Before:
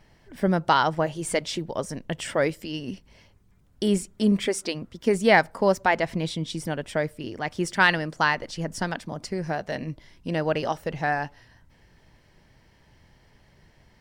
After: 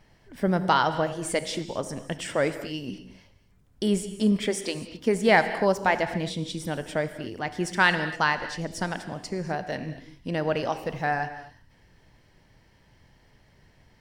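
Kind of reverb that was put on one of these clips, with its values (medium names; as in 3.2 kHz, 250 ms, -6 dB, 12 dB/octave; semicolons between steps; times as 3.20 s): gated-style reverb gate 280 ms flat, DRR 10 dB; trim -1.5 dB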